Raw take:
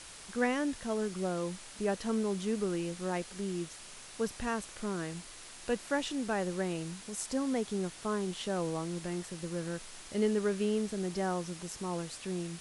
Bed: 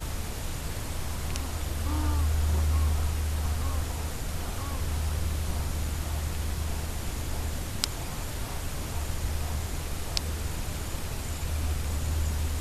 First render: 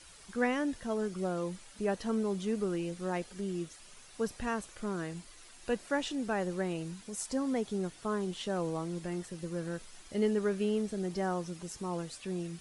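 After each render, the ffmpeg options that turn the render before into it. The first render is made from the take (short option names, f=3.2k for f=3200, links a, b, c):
-af "afftdn=nr=9:nf=-50"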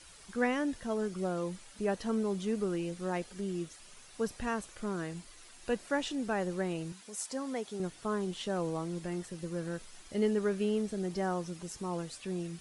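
-filter_complex "[0:a]asettb=1/sr,asplit=3[a][b][c];[a]atrim=end=6.924[d];[b]atrim=start=6.92:end=7.8,asetpts=PTS-STARTPTS,afade=t=in:d=0.004:c=qsin,afade=t=out:st=0.876:d=0.004:c=qsin,highpass=f=470:p=1[e];[c]atrim=start=7.796[f];[d][e]acrossfade=d=0.004:c1=hsin:c2=qsin[g];[g][f]acrossfade=d=0.004:c1=qsin:c2=hsin"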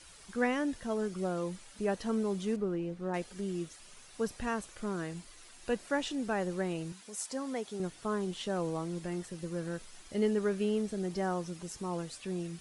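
-filter_complex "[0:a]asettb=1/sr,asplit=3[a][b][c];[a]atrim=end=2.564[d];[b]atrim=start=2.56:end=3.14,asetpts=PTS-STARTPTS,afade=t=in:d=0.004:c=qsin,afade=t=out:st=0.576:d=0.004:c=qsin,lowpass=f=1.2k:p=1[e];[c]atrim=start=3.136[f];[d][e]acrossfade=d=0.004:c1=hsin:c2=qsin[g];[g][f]acrossfade=d=0.004:c1=qsin:c2=hsin"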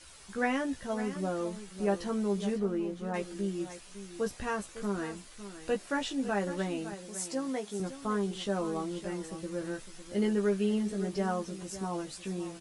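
-filter_complex "[0:a]asplit=2[a][b];[b]adelay=15,volume=-4dB[c];[a][c]amix=inputs=2:normalize=0,aecho=1:1:556:0.237"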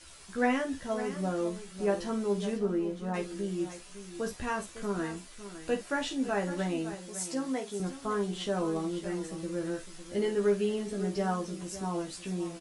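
-af "aecho=1:1:12|49:0.447|0.282"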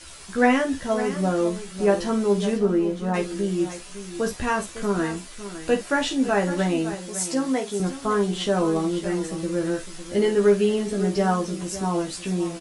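-af "volume=9dB"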